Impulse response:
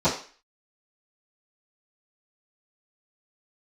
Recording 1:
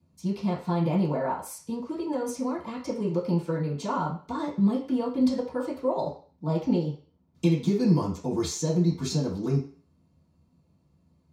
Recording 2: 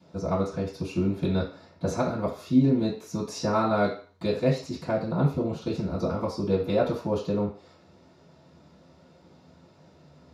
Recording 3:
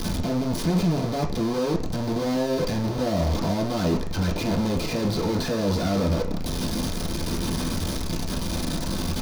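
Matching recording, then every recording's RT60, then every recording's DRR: 2; 0.40 s, 0.40 s, 0.40 s; -12.0 dB, -17.0 dB, -3.5 dB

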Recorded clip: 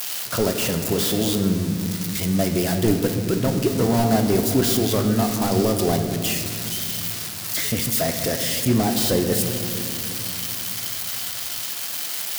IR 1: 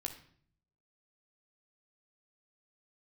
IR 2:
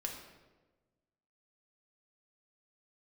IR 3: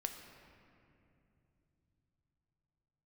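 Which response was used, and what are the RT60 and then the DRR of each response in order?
3; 0.55 s, 1.2 s, 2.8 s; 3.0 dB, 0.5 dB, 4.5 dB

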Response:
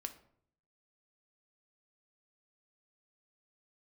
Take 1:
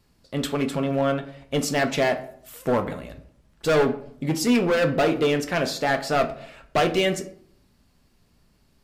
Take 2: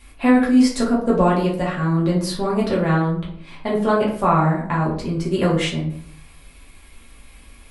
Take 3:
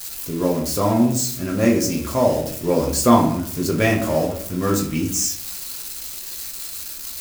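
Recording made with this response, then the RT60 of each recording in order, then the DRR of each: 1; 0.65 s, 0.60 s, 0.60 s; 7.0 dB, -5.5 dB, -1.0 dB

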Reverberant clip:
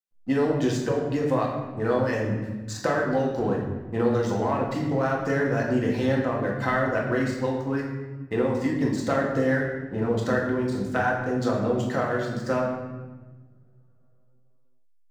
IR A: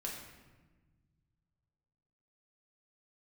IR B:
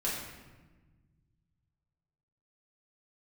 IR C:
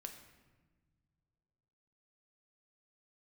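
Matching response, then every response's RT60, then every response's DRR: A; 1.3 s, 1.3 s, no single decay rate; -2.5 dB, -7.0 dB, 4.5 dB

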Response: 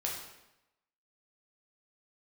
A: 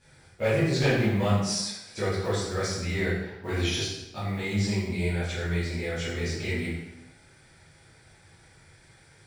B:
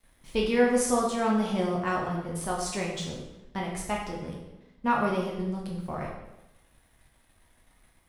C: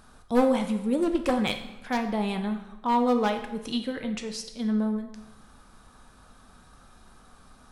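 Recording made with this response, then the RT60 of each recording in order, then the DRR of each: B; 0.90 s, 0.90 s, 0.90 s; -12.5 dB, -3.0 dB, 5.5 dB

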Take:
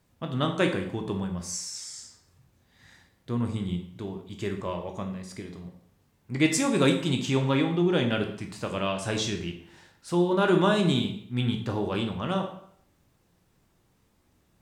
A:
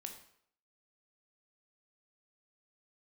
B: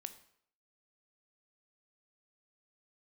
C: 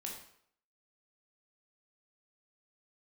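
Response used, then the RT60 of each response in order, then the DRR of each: A; 0.65 s, 0.65 s, 0.65 s; 4.0 dB, 9.5 dB, -1.5 dB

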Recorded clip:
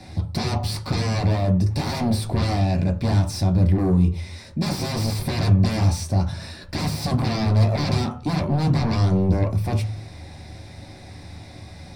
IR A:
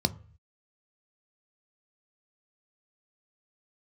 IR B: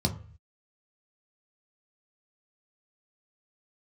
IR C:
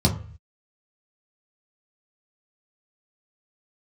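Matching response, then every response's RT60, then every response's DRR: B; 0.45 s, 0.45 s, 0.45 s; 10.5 dB, 2.5 dB, -1.5 dB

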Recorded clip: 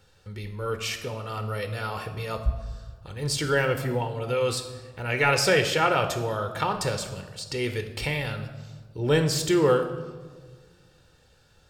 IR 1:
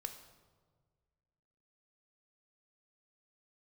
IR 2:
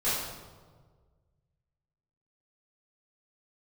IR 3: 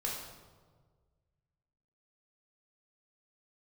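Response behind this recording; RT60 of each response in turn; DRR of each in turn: 1; 1.6 s, 1.6 s, 1.6 s; 7.0 dB, -13.0 dB, -3.0 dB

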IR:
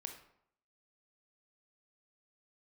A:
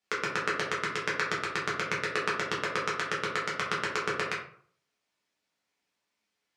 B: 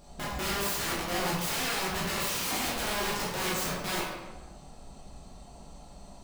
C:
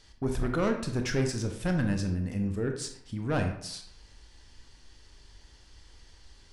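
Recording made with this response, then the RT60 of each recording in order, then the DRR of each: C; 0.50 s, 1.2 s, 0.70 s; -5.5 dB, -6.5 dB, 4.5 dB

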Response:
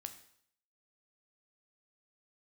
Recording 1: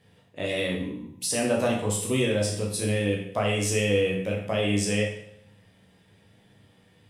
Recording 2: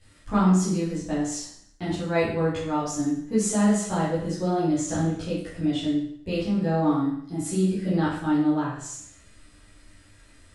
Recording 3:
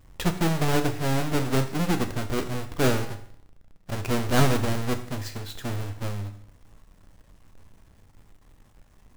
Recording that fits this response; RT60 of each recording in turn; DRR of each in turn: 3; 0.65 s, 0.65 s, 0.65 s; -2.0 dB, -11.5 dB, 7.0 dB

